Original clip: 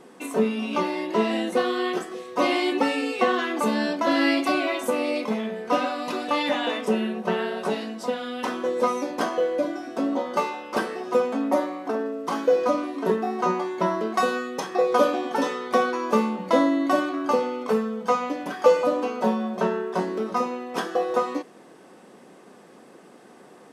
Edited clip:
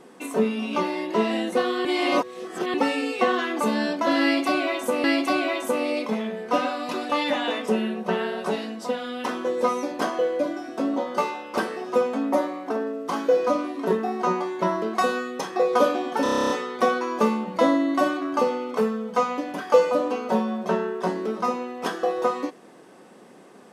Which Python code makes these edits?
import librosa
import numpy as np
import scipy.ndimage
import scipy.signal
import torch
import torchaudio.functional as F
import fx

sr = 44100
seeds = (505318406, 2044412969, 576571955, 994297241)

y = fx.edit(x, sr, fx.reverse_span(start_s=1.85, length_s=0.89),
    fx.repeat(start_s=4.23, length_s=0.81, count=2),
    fx.stutter(start_s=15.42, slice_s=0.03, count=10), tone=tone)